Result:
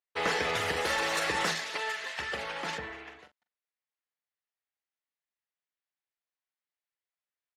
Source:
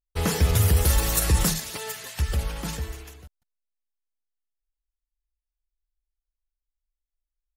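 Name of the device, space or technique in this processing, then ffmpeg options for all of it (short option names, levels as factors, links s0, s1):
intercom: -filter_complex "[0:a]highpass=480,lowpass=3500,equalizer=f=1900:t=o:w=0.43:g=4.5,asoftclip=type=tanh:threshold=0.0668,asplit=2[s0][s1];[s1]adelay=42,volume=0.282[s2];[s0][s2]amix=inputs=2:normalize=0,asettb=1/sr,asplit=3[s3][s4][s5];[s3]atrim=end=2.784[s6];[s4]atrim=start=2.78:end=3.19,asetpts=PTS-STARTPTS,afade=t=in:d=0.004:c=qsin,afade=t=out:st=0.406:d=0.004:c=qsin,bass=f=250:g=8,treble=f=4000:g=-12[s7];[s5]atrim=start=3.186[s8];[s6][s7]acrossfade=d=0.004:c1=hsin:c2=qsin[s9];[s9][s8]acrossfade=d=0.004:c1=qsin:c2=hsin,volume=1.41"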